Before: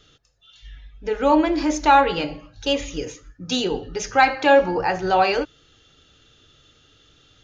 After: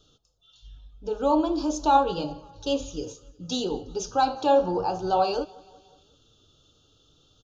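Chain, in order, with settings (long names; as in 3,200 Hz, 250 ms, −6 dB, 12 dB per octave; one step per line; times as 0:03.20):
flanger 0.53 Hz, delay 3 ms, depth 8.6 ms, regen +79%
Butterworth band-reject 2,000 Hz, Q 0.98
on a send: repeating echo 182 ms, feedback 57%, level −24 dB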